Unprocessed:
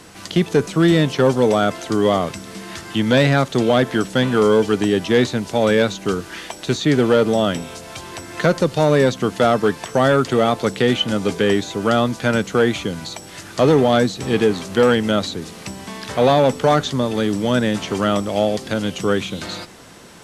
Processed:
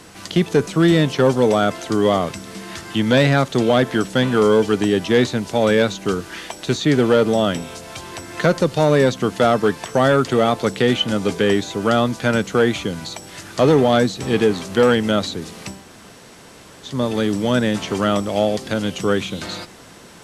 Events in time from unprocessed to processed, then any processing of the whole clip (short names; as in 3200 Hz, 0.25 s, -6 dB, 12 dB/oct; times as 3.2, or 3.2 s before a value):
15.78–16.91 room tone, crossfade 0.24 s